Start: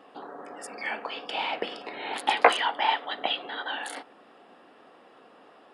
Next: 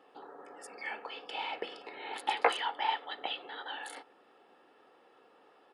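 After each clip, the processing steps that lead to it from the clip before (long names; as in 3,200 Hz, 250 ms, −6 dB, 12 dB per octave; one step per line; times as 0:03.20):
low-shelf EQ 130 Hz −5 dB
comb filter 2.3 ms, depth 36%
level −8.5 dB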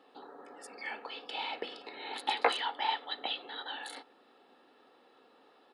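thirty-one-band graphic EQ 100 Hz −6 dB, 250 Hz +7 dB, 4,000 Hz +11 dB
level −1 dB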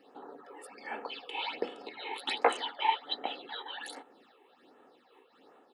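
all-pass phaser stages 8, 1.3 Hz, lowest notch 180–4,800 Hz
amplitude modulation by smooth noise, depth 55%
level +6 dB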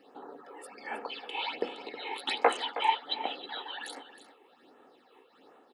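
single-tap delay 317 ms −13.5 dB
level +1.5 dB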